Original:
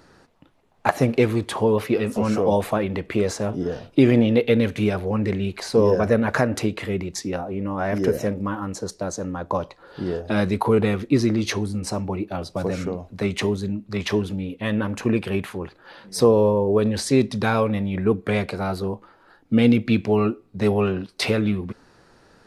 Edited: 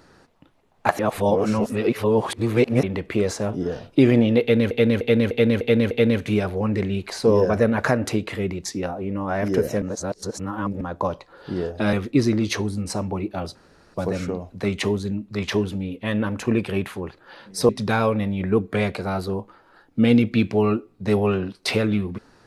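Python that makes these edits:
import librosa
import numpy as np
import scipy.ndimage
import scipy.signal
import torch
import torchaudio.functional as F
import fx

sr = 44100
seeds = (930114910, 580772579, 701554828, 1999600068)

y = fx.edit(x, sr, fx.reverse_span(start_s=0.99, length_s=1.84),
    fx.repeat(start_s=4.41, length_s=0.3, count=6),
    fx.reverse_span(start_s=8.32, length_s=0.99),
    fx.cut(start_s=10.43, length_s=0.47),
    fx.insert_room_tone(at_s=12.52, length_s=0.39),
    fx.cut(start_s=16.27, length_s=0.96), tone=tone)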